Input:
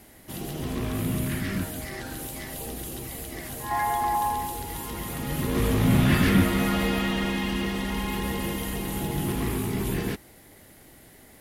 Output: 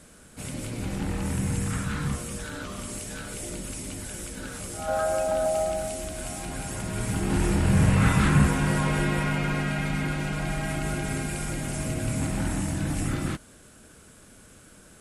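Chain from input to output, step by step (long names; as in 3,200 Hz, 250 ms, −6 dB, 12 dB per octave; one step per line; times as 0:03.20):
speed change −24%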